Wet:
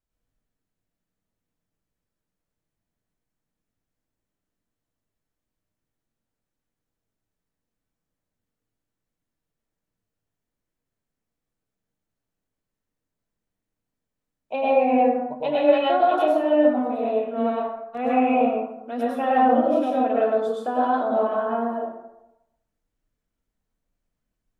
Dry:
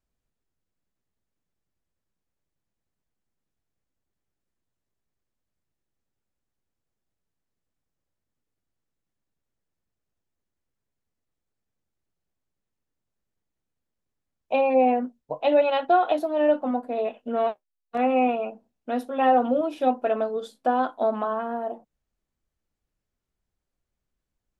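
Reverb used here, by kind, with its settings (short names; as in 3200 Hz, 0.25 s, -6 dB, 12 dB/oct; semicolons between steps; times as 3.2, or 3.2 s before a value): plate-style reverb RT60 0.9 s, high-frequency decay 0.5×, pre-delay 90 ms, DRR -6 dB; gain -5 dB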